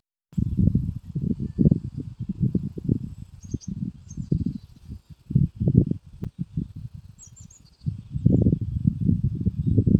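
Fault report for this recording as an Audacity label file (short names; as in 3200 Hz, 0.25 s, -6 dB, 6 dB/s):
6.240000	6.250000	gap 6 ms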